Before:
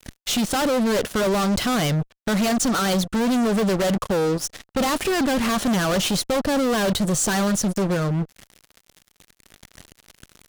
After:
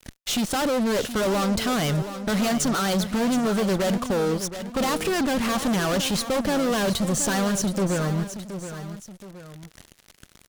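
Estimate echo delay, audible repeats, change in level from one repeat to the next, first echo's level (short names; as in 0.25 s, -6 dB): 0.722 s, 2, -6.5 dB, -11.0 dB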